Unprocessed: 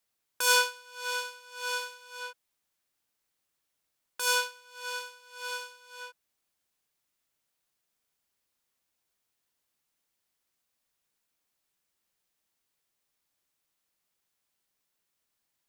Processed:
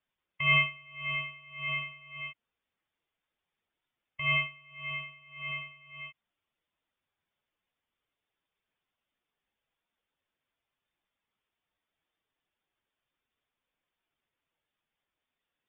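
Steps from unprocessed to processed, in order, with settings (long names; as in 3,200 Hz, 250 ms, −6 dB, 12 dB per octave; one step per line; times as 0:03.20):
expanding power law on the bin magnitudes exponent 1.5
voice inversion scrambler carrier 3,600 Hz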